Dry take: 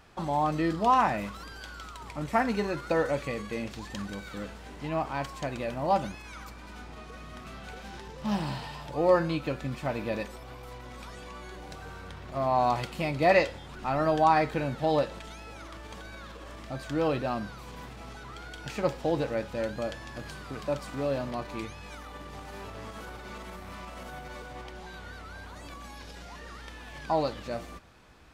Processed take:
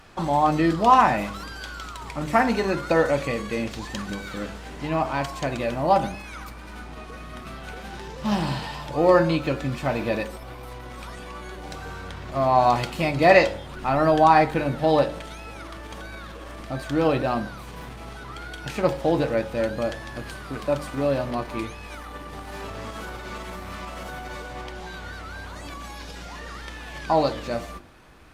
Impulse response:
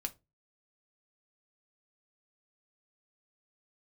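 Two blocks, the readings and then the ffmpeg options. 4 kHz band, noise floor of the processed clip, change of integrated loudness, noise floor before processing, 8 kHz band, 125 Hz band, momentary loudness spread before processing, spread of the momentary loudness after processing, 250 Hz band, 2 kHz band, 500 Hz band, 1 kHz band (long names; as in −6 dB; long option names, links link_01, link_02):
+6.5 dB, −39 dBFS, +6.5 dB, −45 dBFS, +6.0 dB, +6.0 dB, 19 LU, 20 LU, +6.5 dB, +7.0 dB, +6.5 dB, +6.5 dB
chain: -filter_complex "[0:a]bandreject=frequency=49.77:width_type=h:width=4,bandreject=frequency=99.54:width_type=h:width=4,bandreject=frequency=149.31:width_type=h:width=4,bandreject=frequency=199.08:width_type=h:width=4,bandreject=frequency=248.85:width_type=h:width=4,bandreject=frequency=298.62:width_type=h:width=4,bandreject=frequency=348.39:width_type=h:width=4,bandreject=frequency=398.16:width_type=h:width=4,bandreject=frequency=447.93:width_type=h:width=4,bandreject=frequency=497.7:width_type=h:width=4,bandreject=frequency=547.47:width_type=h:width=4,bandreject=frequency=597.24:width_type=h:width=4,bandreject=frequency=647.01:width_type=h:width=4,bandreject=frequency=696.78:width_type=h:width=4,bandreject=frequency=746.55:width_type=h:width=4,bandreject=frequency=796.32:width_type=h:width=4,bandreject=frequency=846.09:width_type=h:width=4,bandreject=frequency=895.86:width_type=h:width=4,bandreject=frequency=945.63:width_type=h:width=4,bandreject=frequency=995.4:width_type=h:width=4,bandreject=frequency=1045.17:width_type=h:width=4,asplit=2[link_01][link_02];[1:a]atrim=start_sample=2205,asetrate=61740,aresample=44100[link_03];[link_02][link_03]afir=irnorm=-1:irlink=0,volume=-7dB[link_04];[link_01][link_04]amix=inputs=2:normalize=0,volume=5dB" -ar 48000 -c:a libopus -b:a 48k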